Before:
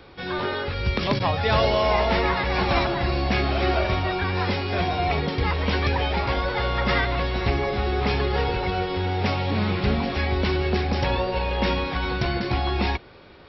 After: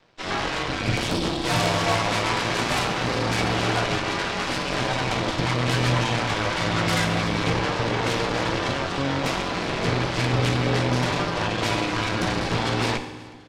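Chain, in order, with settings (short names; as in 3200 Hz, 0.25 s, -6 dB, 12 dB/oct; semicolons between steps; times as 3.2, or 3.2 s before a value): spectral gain 1.06–1.47, 490–2600 Hz -10 dB; in parallel at +0.5 dB: limiter -20.5 dBFS, peak gain reduction 10 dB; on the sum: flange 0.36 Hz, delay 8.8 ms, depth 8.5 ms, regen -18%; frequency shift +46 Hz; added harmonics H 7 -18 dB, 8 -11 dB, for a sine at -9.5 dBFS; feedback echo 0.368 s, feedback 54%, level -23.5 dB; on a send at -7 dB: reverb RT60 1.3 s, pre-delay 3 ms; on the sum: gain -4 dB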